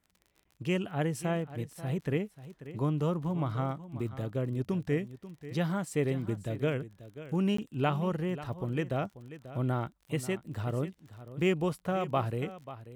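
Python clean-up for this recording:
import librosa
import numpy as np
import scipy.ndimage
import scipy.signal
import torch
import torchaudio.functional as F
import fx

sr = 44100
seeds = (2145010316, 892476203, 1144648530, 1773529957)

y = fx.fix_declick_ar(x, sr, threshold=6.5)
y = fx.fix_interpolate(y, sr, at_s=(0.44, 7.57), length_ms=14.0)
y = fx.fix_echo_inverse(y, sr, delay_ms=538, level_db=-14.5)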